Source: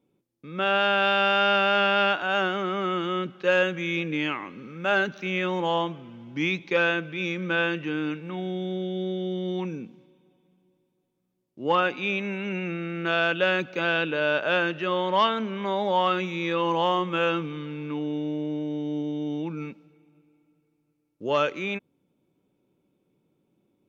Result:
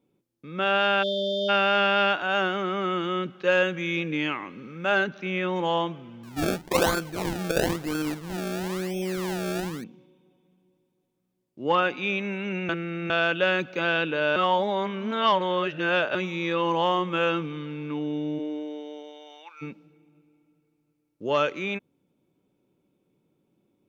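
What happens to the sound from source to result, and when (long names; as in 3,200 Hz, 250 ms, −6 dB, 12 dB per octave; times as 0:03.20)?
0:01.03–0:01.49: time-frequency box erased 660–3,000 Hz
0:05.04–0:05.56: high-shelf EQ 5,000 Hz −10.5 dB
0:06.23–0:09.84: sample-and-hold swept by an LFO 30× 1 Hz
0:12.69–0:13.10: reverse
0:14.36–0:16.15: reverse
0:18.38–0:19.61: high-pass filter 240 Hz → 970 Hz 24 dB per octave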